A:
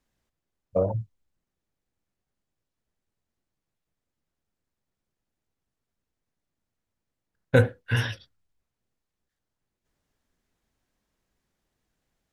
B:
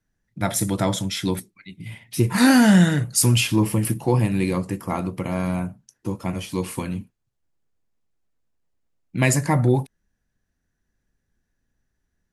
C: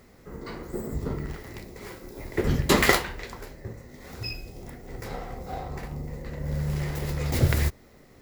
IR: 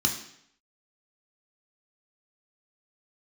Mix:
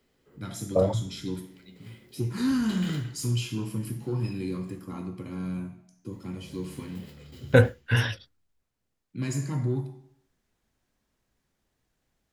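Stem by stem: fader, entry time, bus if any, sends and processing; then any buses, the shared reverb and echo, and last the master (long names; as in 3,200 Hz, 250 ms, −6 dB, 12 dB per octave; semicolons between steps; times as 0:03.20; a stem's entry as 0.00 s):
+1.5 dB, 0.00 s, no bus, no send, no processing
−15.5 dB, 0.00 s, bus A, send −8.5 dB, soft clipping −12 dBFS, distortion −15 dB
−17.0 dB, 0.00 s, muted 0:04.84–0:06.12, bus A, send −18 dB, parametric band 3,000 Hz +12.5 dB 0.35 octaves; automatic ducking −16 dB, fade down 0.40 s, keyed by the first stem
bus A: 0.0 dB, high-pass filter 330 Hz 24 dB per octave; downward compressor, threshold −42 dBFS, peak gain reduction 12 dB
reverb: on, RT60 0.70 s, pre-delay 3 ms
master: no processing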